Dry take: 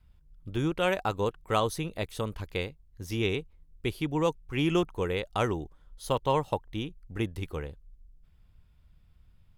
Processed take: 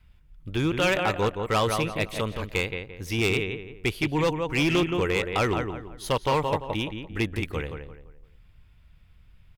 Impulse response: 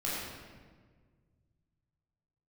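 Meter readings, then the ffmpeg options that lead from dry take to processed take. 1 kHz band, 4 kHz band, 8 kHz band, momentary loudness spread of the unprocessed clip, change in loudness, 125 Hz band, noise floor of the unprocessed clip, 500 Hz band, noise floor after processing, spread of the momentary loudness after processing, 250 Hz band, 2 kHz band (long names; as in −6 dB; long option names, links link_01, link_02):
+4.0 dB, +6.5 dB, +6.5 dB, 11 LU, +4.5 dB, +4.0 dB, −61 dBFS, +3.5 dB, −56 dBFS, 10 LU, +4.0 dB, +9.0 dB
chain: -filter_complex "[0:a]equalizer=frequency=2300:width_type=o:width=1.2:gain=8,asplit=2[link_01][link_02];[link_02]adelay=171,lowpass=frequency=2200:poles=1,volume=-6.5dB,asplit=2[link_03][link_04];[link_04]adelay=171,lowpass=frequency=2200:poles=1,volume=0.35,asplit=2[link_05][link_06];[link_06]adelay=171,lowpass=frequency=2200:poles=1,volume=0.35,asplit=2[link_07][link_08];[link_08]adelay=171,lowpass=frequency=2200:poles=1,volume=0.35[link_09];[link_03][link_05][link_07][link_09]amix=inputs=4:normalize=0[link_10];[link_01][link_10]amix=inputs=2:normalize=0,volume=21dB,asoftclip=hard,volume=-21dB,volume=3.5dB"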